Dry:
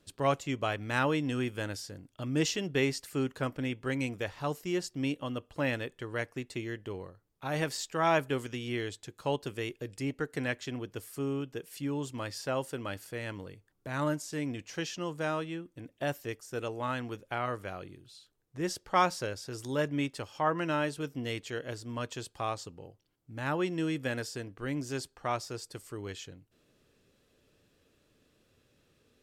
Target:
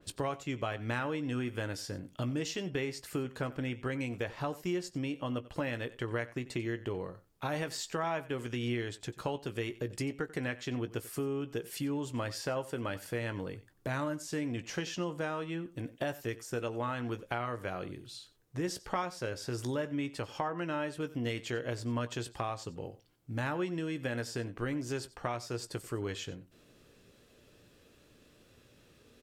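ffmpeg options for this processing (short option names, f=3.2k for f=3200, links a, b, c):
-filter_complex "[0:a]acompressor=threshold=-39dB:ratio=6,asplit=2[a][b];[b]adelay=17,volume=-11.5dB[c];[a][c]amix=inputs=2:normalize=0,aecho=1:1:92:0.126,adynamicequalizer=threshold=0.00112:dfrequency=3300:dqfactor=0.7:tfrequency=3300:tqfactor=0.7:attack=5:release=100:ratio=0.375:range=2.5:mode=cutabove:tftype=highshelf,volume=6.5dB"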